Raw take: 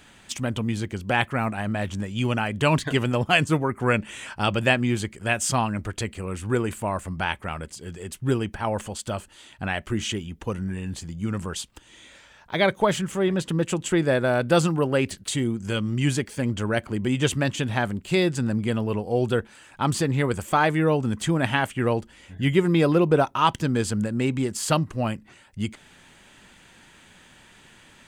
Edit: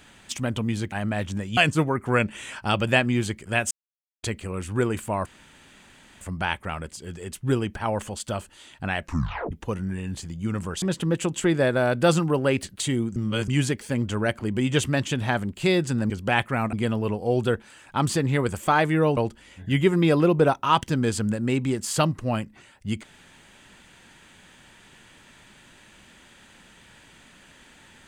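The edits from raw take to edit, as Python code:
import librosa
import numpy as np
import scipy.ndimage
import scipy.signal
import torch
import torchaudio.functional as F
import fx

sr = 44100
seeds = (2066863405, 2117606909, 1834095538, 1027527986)

y = fx.edit(x, sr, fx.move(start_s=0.92, length_s=0.63, to_s=18.58),
    fx.cut(start_s=2.2, length_s=1.11),
    fx.silence(start_s=5.45, length_s=0.52),
    fx.insert_room_tone(at_s=7.0, length_s=0.95),
    fx.tape_stop(start_s=9.8, length_s=0.51),
    fx.cut(start_s=11.61, length_s=1.69),
    fx.reverse_span(start_s=15.64, length_s=0.32),
    fx.cut(start_s=21.02, length_s=0.87), tone=tone)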